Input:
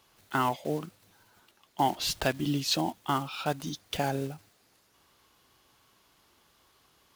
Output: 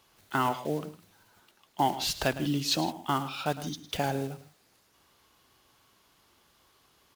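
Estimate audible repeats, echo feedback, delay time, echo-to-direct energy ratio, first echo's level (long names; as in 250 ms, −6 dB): 2, repeats not evenly spaced, 107 ms, −13.5 dB, −14.5 dB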